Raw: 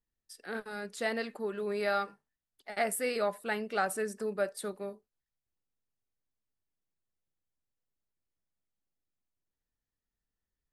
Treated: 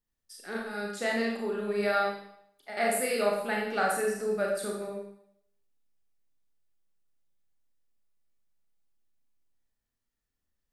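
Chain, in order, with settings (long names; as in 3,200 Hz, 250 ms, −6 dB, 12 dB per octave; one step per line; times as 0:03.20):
four-comb reverb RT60 0.7 s, combs from 27 ms, DRR −1.5 dB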